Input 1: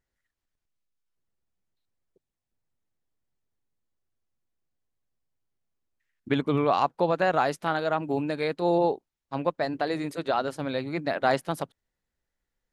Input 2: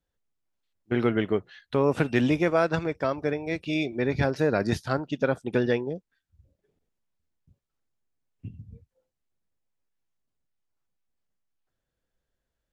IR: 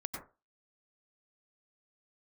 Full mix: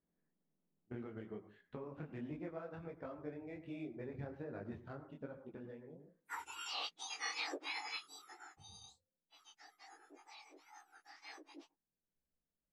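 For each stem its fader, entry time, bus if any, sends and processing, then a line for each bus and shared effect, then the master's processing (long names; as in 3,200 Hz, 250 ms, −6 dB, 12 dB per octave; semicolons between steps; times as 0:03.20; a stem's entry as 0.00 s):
0:08.12 −0.5 dB → 0:08.48 −13.5 dB, 0.00 s, no send, frequency axis turned over on the octave scale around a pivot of 1,800 Hz
−12.0 dB, 0.00 s, muted 0:07.06–0:08.57, send −8.5 dB, running median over 9 samples; downward compressor 6 to 1, threshold −28 dBFS, peak gain reduction 11 dB; automatic ducking −12 dB, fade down 1.45 s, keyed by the first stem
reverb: on, RT60 0.30 s, pre-delay 87 ms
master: head-to-tape spacing loss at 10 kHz 25 dB; micro pitch shift up and down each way 45 cents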